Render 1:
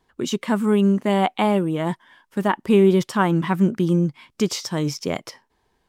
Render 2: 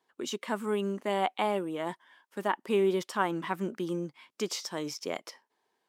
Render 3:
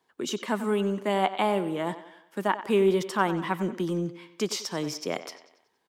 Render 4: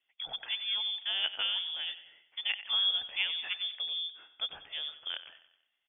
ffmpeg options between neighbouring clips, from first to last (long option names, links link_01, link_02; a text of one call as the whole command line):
ffmpeg -i in.wav -af "highpass=340,volume=-7.5dB" out.wav
ffmpeg -i in.wav -filter_complex "[0:a]acrossover=split=170|6900[link_01][link_02][link_03];[link_01]aeval=exprs='0.0158*sin(PI/2*1.58*val(0)/0.0158)':channel_layout=same[link_04];[link_02]aecho=1:1:93|186|279|372|465:0.224|0.107|0.0516|0.0248|0.0119[link_05];[link_04][link_05][link_03]amix=inputs=3:normalize=0,volume=3.5dB" out.wav
ffmpeg -i in.wav -af "lowpass=frequency=3100:width_type=q:width=0.5098,lowpass=frequency=3100:width_type=q:width=0.6013,lowpass=frequency=3100:width_type=q:width=0.9,lowpass=frequency=3100:width_type=q:width=2.563,afreqshift=-3700,volume=-7.5dB" out.wav